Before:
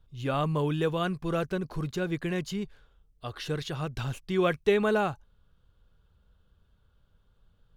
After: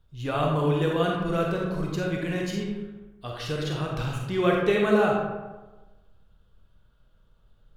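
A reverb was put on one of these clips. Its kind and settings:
comb and all-pass reverb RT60 1.2 s, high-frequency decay 0.5×, pre-delay 5 ms, DRR −1.5 dB

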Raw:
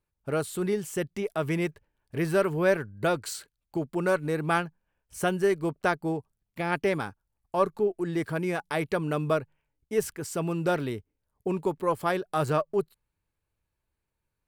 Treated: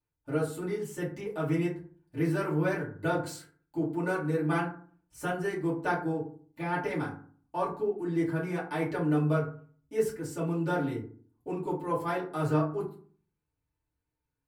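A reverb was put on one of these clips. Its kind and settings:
feedback delay network reverb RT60 0.46 s, low-frequency decay 1.35×, high-frequency decay 0.45×, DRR −8.5 dB
level −13.5 dB

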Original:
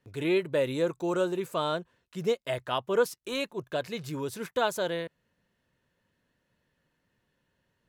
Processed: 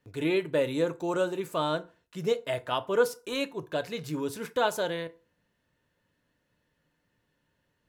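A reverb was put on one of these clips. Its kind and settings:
feedback delay network reverb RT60 0.34 s, low-frequency decay 0.95×, high-frequency decay 0.7×, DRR 10 dB

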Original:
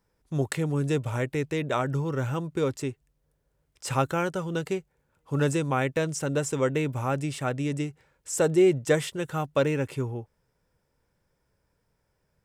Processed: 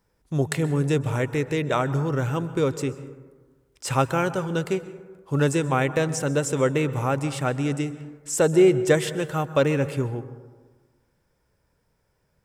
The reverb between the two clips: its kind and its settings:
dense smooth reverb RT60 1.4 s, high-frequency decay 0.35×, pre-delay 115 ms, DRR 13.5 dB
level +3.5 dB

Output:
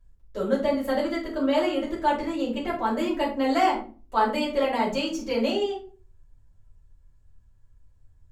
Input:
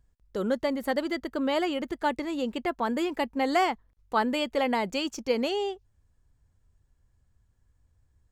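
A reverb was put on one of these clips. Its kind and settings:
rectangular room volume 210 cubic metres, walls furnished, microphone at 5.7 metres
level −8.5 dB

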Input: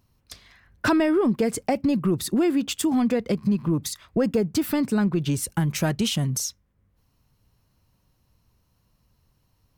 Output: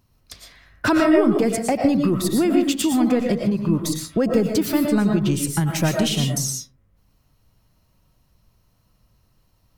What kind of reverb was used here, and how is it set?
comb and all-pass reverb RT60 0.4 s, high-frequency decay 0.4×, pre-delay 75 ms, DRR 2 dB
level +2 dB

